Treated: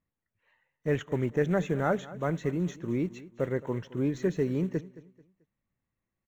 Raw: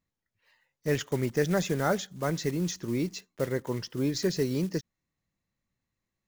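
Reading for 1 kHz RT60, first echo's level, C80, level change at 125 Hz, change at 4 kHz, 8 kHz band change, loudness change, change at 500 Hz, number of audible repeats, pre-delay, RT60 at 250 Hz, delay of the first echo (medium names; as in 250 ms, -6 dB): no reverb, -18.0 dB, no reverb, 0.0 dB, -12.0 dB, -14.5 dB, -0.5 dB, 0.0 dB, 2, no reverb, no reverb, 219 ms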